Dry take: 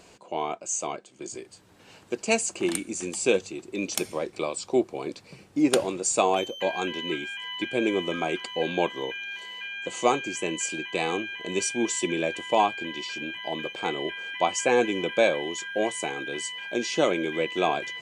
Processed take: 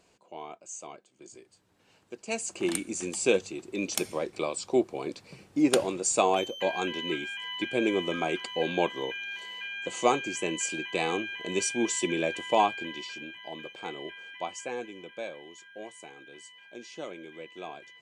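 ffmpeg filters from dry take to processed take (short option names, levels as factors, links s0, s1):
-af "volume=0.841,afade=t=in:st=2.25:d=0.48:silence=0.298538,afade=t=out:st=12.65:d=0.69:silence=0.421697,afade=t=out:st=14.18:d=0.73:silence=0.421697"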